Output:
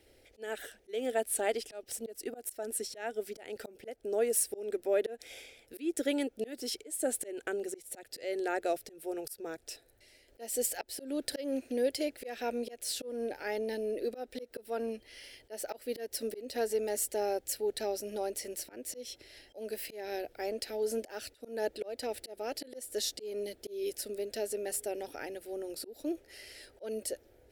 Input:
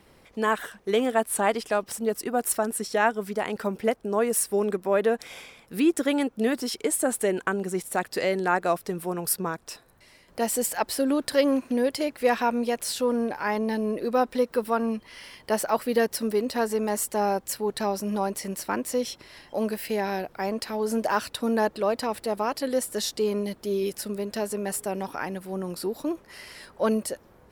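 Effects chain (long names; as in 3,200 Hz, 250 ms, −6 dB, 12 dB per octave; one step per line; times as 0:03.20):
phaser with its sweep stopped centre 440 Hz, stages 4
volume swells 235 ms
level −4 dB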